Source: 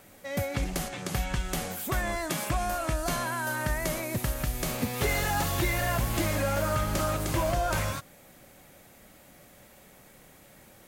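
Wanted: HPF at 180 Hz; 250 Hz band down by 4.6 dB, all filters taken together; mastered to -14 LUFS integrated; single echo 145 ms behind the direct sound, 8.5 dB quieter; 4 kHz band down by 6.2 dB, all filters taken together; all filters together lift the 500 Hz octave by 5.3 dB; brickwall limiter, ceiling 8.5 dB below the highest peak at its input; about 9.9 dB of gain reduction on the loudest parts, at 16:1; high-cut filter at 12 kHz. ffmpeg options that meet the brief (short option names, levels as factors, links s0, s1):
-af "highpass=180,lowpass=12000,equalizer=f=250:t=o:g=-8.5,equalizer=f=500:t=o:g=9,equalizer=f=4000:t=o:g=-8.5,acompressor=threshold=0.0282:ratio=16,alimiter=level_in=1.78:limit=0.0631:level=0:latency=1,volume=0.562,aecho=1:1:145:0.376,volume=14.1"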